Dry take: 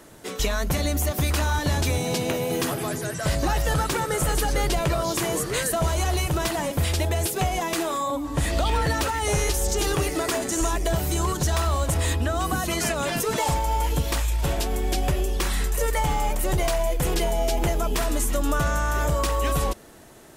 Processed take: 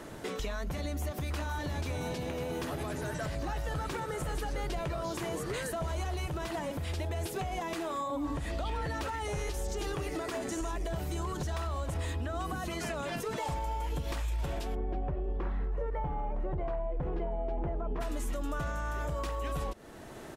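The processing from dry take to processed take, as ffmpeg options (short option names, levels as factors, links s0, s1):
-filter_complex "[0:a]asplit=2[s0][s1];[s1]afade=t=in:st=0.87:d=0.01,afade=t=out:st=1.8:d=0.01,aecho=0:1:520|1040|1560|2080|2600|3120|3640|4160|4680|5200|5720|6240:0.354813|0.283851|0.227081|0.181664|0.145332|0.116265|0.0930122|0.0744098|0.0595278|0.0476222|0.0380978|0.0304782[s2];[s0][s2]amix=inputs=2:normalize=0,asplit=3[s3][s4][s5];[s3]afade=t=out:st=14.74:d=0.02[s6];[s4]lowpass=1100,afade=t=in:st=14.74:d=0.02,afade=t=out:st=18:d=0.02[s7];[s5]afade=t=in:st=18:d=0.02[s8];[s6][s7][s8]amix=inputs=3:normalize=0,acompressor=threshold=0.0447:ratio=6,highshelf=f=5200:g=-11,alimiter=level_in=2.11:limit=0.0631:level=0:latency=1:release=498,volume=0.473,volume=1.58"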